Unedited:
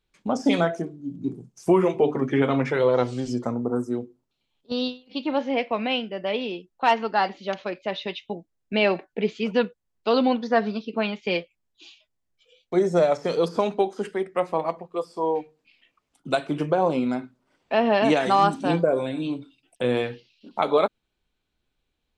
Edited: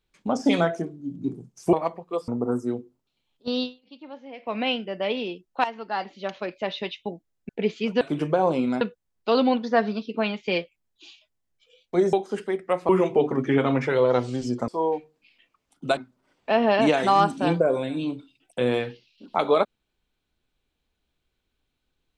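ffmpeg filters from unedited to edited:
-filter_complex "[0:a]asplit=13[a][b][c][d][e][f][g][h][i][j][k][l][m];[a]atrim=end=1.732[n];[b]atrim=start=14.558:end=15.112[o];[c]atrim=start=3.518:end=5.14,asetpts=PTS-STARTPTS,afade=t=out:st=1.382:d=0.24:silence=0.149624[p];[d]atrim=start=5.14:end=5.61,asetpts=PTS-STARTPTS,volume=-16.5dB[q];[e]atrim=start=5.61:end=6.88,asetpts=PTS-STARTPTS,afade=t=in:d=0.24:silence=0.149624,afade=t=out:st=1.266:d=0.004:c=hsin:silence=0.211349[r];[f]atrim=start=6.88:end=8.732,asetpts=PTS-STARTPTS,afade=t=in:d=0.93:silence=0.211349[s];[g]atrim=start=9.078:end=9.602[t];[h]atrim=start=16.398:end=17.202[u];[i]atrim=start=9.598:end=12.922[v];[j]atrim=start=13.798:end=14.562[w];[k]atrim=start=1.728:end=3.522[x];[l]atrim=start=15.108:end=16.402[y];[m]atrim=start=17.198[z];[n][o]acrossfade=d=0.004:c1=hsin:c2=hsin[aa];[p][q][r][s]concat=n=4:v=0:a=1[ab];[aa][ab]acrossfade=d=0.004:c1=hsin:c2=hsin[ac];[ac][t]acrossfade=d=0.004:c1=hsin:c2=hsin[ad];[ad][u]acrossfade=d=0.004:c1=hsin:c2=hsin[ae];[ae][v]acrossfade=d=0.004:c1=hsin:c2=hsin[af];[af][w]acrossfade=d=0.004:c1=hsin:c2=hsin[ag];[ag][x]acrossfade=d=0.004:c1=hsin:c2=hsin[ah];[ah][y]acrossfade=d=0.004:c1=hsin:c2=hsin[ai];[ai][z]acrossfade=d=0.004:c1=hsin:c2=hsin"

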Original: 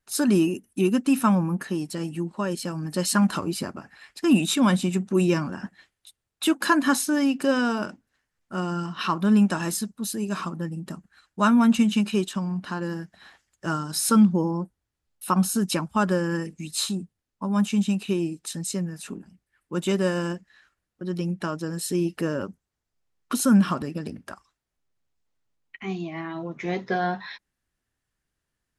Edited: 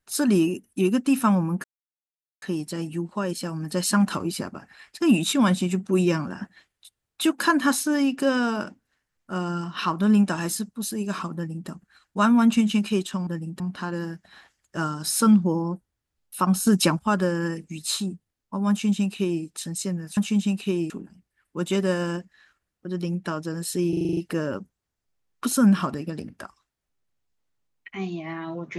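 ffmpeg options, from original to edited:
-filter_complex "[0:a]asplit=15[a][b][c][d][e][f][g][h][i][j][k][l][m][n][o];[a]atrim=end=1.64,asetpts=PTS-STARTPTS,afade=t=out:st=1.636:d=0.004:c=hsin,apad=pad_dur=0.78[p];[b]atrim=start=1.64:end=12.492,asetpts=PTS-STARTPTS,afade=t=in:d=0.004:c=hsin[q];[c]atrim=start=10.568:end=10.902[r];[d]atrim=start=12.488:end=15.562[s];[e]atrim=start=15.558:end=15.882,asetpts=PTS-STARTPTS,volume=5.5dB[t];[f]atrim=start=15.878:end=19.062[u];[g]atrim=start=17.588:end=18.322[v];[h]atrim=start=19.058:end=22.092[w];[i]atrim=start=22.048:end=22.092[x];[j]atrim=start=22.048:end=22.092[y];[k]atrim=start=22.048:end=22.092[z];[l]atrim=start=22.048:end=22.092[aa];[m]atrim=start=22.048:end=22.092[ab];[n]atrim=start=22.048:end=22.092[ac];[o]atrim=start=22.048[ad];[p][q]concat=n=2:v=0:a=1[ae];[ae][r]acrossfade=d=0.004:c1=hsin:c2=hsin[af];[af][s]acrossfade=d=0.004:c1=hsin:c2=hsin[ag];[ag][t]acrossfade=d=0.004:c1=hsin:c2=hsin[ah];[ah][u]acrossfade=d=0.004:c1=hsin:c2=hsin[ai];[ai][v]acrossfade=d=0.004:c1=hsin:c2=hsin[aj];[aj][w]acrossfade=d=0.004:c1=hsin:c2=hsin[ak];[ak][x]acrossfade=d=0.004:c1=hsin:c2=hsin[al];[al][y]acrossfade=d=0.004:c1=hsin:c2=hsin[am];[am][z]acrossfade=d=0.004:c1=hsin:c2=hsin[an];[an][aa]acrossfade=d=0.004:c1=hsin:c2=hsin[ao];[ao][ab]acrossfade=d=0.004:c1=hsin:c2=hsin[ap];[ap][ac]acrossfade=d=0.004:c1=hsin:c2=hsin[aq];[aq][ad]acrossfade=d=0.004:c1=hsin:c2=hsin"

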